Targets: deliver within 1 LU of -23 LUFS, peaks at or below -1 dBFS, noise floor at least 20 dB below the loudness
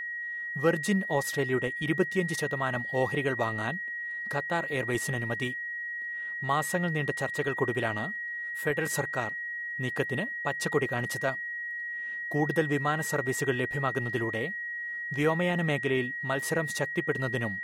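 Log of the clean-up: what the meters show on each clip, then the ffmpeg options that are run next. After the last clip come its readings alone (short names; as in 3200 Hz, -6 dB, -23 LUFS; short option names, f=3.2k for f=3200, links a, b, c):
steady tone 1900 Hz; tone level -33 dBFS; loudness -30.0 LUFS; peak -13.0 dBFS; loudness target -23.0 LUFS
-> -af "bandreject=f=1.9k:w=30"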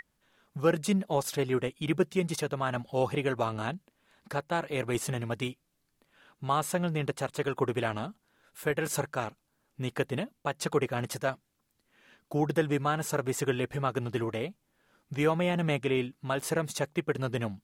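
steady tone none; loudness -31.0 LUFS; peak -14.0 dBFS; loudness target -23.0 LUFS
-> -af "volume=8dB"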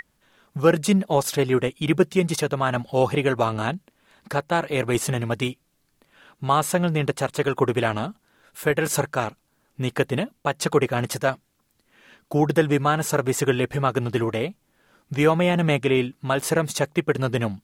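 loudness -23.0 LUFS; peak -6.0 dBFS; noise floor -69 dBFS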